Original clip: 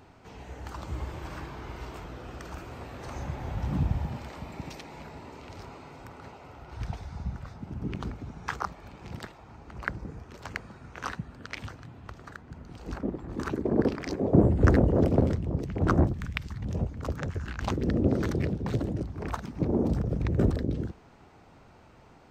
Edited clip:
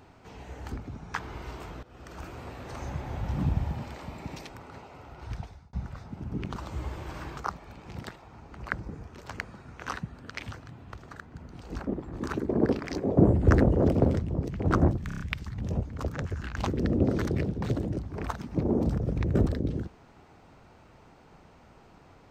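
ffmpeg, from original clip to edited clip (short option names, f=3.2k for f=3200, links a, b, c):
-filter_complex "[0:a]asplit=12[a][b][c][d][e][f][g][h][i][j][k][l];[a]atrim=end=0.722[m];[b]atrim=start=8.058:end=8.532[n];[c]atrim=start=1.528:end=2.17,asetpts=PTS-STARTPTS,afade=t=out:st=0.638:d=0.004:c=hsin:silence=0.141254[o];[d]atrim=start=2.17:end=4.832,asetpts=PTS-STARTPTS,afade=t=in:d=0.43:silence=0.141254[p];[e]atrim=start=5.988:end=7.23,asetpts=PTS-STARTPTS,afade=t=out:st=0.772:d=0.47[q];[f]atrim=start=7.23:end=8.062,asetpts=PTS-STARTPTS,afade=t=in:d=0.004:c=hsin[r];[g]atrim=start=0.718:end=1.532[s];[h]atrim=start=8.528:end=16.272[t];[i]atrim=start=16.238:end=16.272[u];[j]atrim=start=16.238:end=16.272[v];[k]atrim=start=16.238:end=16.272[w];[l]atrim=start=16.238[x];[m][n]acrossfade=d=0.004:c1=hsin:c2=hsin[y];[o][p]concat=n=2:v=0:a=1[z];[y][z]acrossfade=d=0.004:c1=hsin:c2=hsin[aa];[q][r]concat=n=2:v=0:a=1[ab];[aa][ab]acrossfade=d=0.004:c1=hsin:c2=hsin[ac];[ac][s]acrossfade=d=0.004:c1=hsin:c2=hsin[ad];[ad][t]acrossfade=d=0.004:c1=hsin:c2=hsin[ae];[ae][u]acrossfade=d=0.004:c1=hsin:c2=hsin[af];[af][v]acrossfade=d=0.004:c1=hsin:c2=hsin[ag];[ag][w]acrossfade=d=0.004:c1=hsin:c2=hsin[ah];[ah][x]acrossfade=d=0.004:c1=hsin:c2=hsin"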